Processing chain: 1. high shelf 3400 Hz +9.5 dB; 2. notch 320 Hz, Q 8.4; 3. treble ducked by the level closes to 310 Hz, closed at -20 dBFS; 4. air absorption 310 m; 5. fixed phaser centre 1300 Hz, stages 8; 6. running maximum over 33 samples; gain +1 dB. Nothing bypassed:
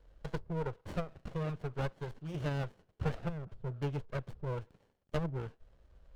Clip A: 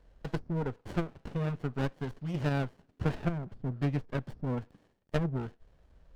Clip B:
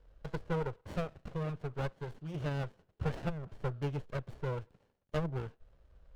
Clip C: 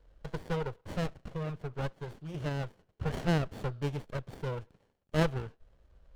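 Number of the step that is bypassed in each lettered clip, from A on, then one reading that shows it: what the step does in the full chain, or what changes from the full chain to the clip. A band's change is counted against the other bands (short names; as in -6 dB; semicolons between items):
5, 250 Hz band +4.0 dB; 1, crest factor change -1.5 dB; 3, 4 kHz band +4.0 dB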